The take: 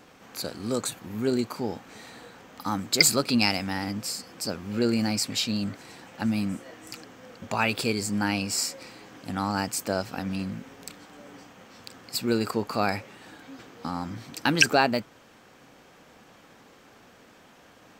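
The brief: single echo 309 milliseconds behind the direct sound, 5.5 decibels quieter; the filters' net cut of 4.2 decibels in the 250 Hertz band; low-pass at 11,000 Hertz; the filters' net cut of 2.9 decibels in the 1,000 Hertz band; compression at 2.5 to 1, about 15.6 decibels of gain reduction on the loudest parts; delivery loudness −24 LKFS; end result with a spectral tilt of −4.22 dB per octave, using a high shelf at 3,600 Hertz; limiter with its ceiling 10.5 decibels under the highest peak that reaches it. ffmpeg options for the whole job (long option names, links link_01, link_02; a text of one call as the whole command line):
ffmpeg -i in.wav -af "lowpass=11000,equalizer=frequency=250:width_type=o:gain=-5,equalizer=frequency=1000:width_type=o:gain=-3,highshelf=frequency=3600:gain=-8,acompressor=threshold=-41dB:ratio=2.5,alimiter=level_in=5dB:limit=-24dB:level=0:latency=1,volume=-5dB,aecho=1:1:309:0.531,volume=18.5dB" out.wav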